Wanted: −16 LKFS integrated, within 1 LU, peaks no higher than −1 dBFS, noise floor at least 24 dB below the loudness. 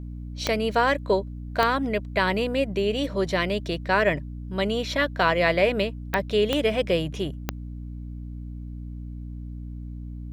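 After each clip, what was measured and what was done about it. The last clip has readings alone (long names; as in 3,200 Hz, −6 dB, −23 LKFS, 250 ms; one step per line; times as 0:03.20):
number of clicks 5; mains hum 60 Hz; hum harmonics up to 300 Hz; level of the hum −33 dBFS; integrated loudness −24.5 LKFS; sample peak −6.5 dBFS; target loudness −16.0 LKFS
→ click removal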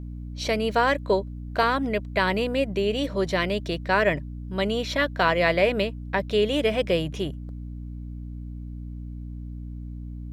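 number of clicks 2; mains hum 60 Hz; hum harmonics up to 300 Hz; level of the hum −33 dBFS
→ hum removal 60 Hz, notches 5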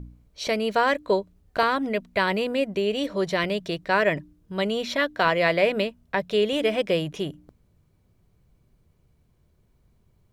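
mains hum none found; integrated loudness −25.0 LKFS; sample peak −7.5 dBFS; target loudness −16.0 LKFS
→ level +9 dB
brickwall limiter −1 dBFS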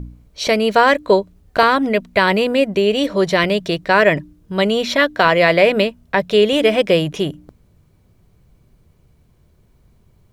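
integrated loudness −16.0 LKFS; sample peak −1.0 dBFS; background noise floor −56 dBFS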